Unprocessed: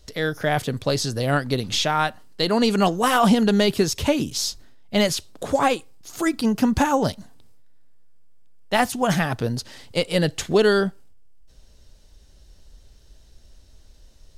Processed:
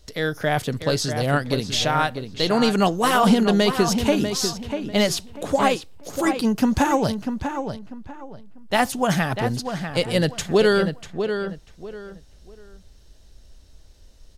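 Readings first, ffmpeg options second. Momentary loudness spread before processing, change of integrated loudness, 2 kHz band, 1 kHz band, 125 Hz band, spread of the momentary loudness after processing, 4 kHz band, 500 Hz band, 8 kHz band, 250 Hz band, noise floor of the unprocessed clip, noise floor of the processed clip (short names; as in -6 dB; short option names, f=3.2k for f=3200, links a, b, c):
9 LU, 0.0 dB, +0.5 dB, +0.5 dB, +0.5 dB, 14 LU, +0.5 dB, +0.5 dB, 0.0 dB, +0.5 dB, -51 dBFS, -49 dBFS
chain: -filter_complex "[0:a]asplit=2[a][b];[b]adelay=644,lowpass=f=3k:p=1,volume=-7.5dB,asplit=2[c][d];[d]adelay=644,lowpass=f=3k:p=1,volume=0.27,asplit=2[e][f];[f]adelay=644,lowpass=f=3k:p=1,volume=0.27[g];[a][c][e][g]amix=inputs=4:normalize=0"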